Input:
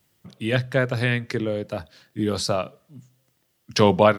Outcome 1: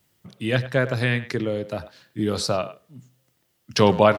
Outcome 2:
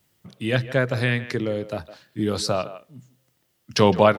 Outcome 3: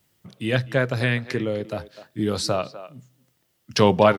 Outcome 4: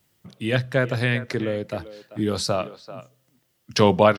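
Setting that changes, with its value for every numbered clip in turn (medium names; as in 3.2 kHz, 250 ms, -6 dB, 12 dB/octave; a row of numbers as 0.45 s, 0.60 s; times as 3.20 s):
speakerphone echo, time: 100 ms, 160 ms, 250 ms, 390 ms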